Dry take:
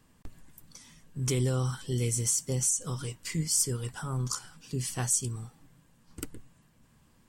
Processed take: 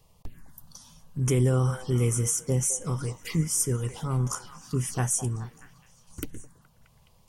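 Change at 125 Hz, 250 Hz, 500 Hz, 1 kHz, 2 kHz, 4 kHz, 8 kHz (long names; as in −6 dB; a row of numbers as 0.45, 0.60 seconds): +5.5, +5.5, +5.5, +5.0, +2.5, −3.5, 0.0 decibels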